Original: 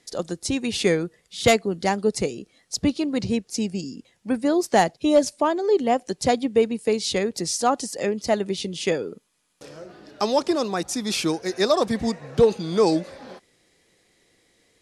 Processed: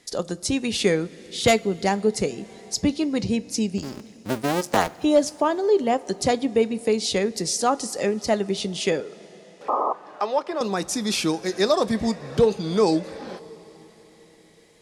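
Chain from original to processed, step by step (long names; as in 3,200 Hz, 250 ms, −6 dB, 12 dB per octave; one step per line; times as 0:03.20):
0:03.78–0:04.98: sub-harmonics by changed cycles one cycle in 2, muted
0:09.68–0:09.93: sound drawn into the spectrogram noise 220–1,300 Hz −21 dBFS
0:09.00–0:10.61: three-way crossover with the lows and the highs turned down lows −17 dB, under 450 Hz, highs −17 dB, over 2,700 Hz
coupled-rooms reverb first 0.21 s, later 4.8 s, from −21 dB, DRR 13.5 dB
in parallel at 0 dB: downward compressor, threshold −32 dBFS, peak gain reduction 19 dB
on the sum: level −2 dB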